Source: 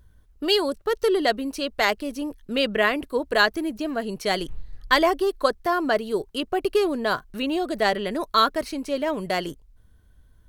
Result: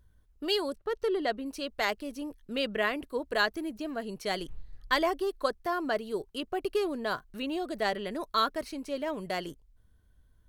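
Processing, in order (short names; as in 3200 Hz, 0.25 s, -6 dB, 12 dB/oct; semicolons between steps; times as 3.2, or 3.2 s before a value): 0.76–1.46 high shelf 4900 Hz -10.5 dB; gain -8 dB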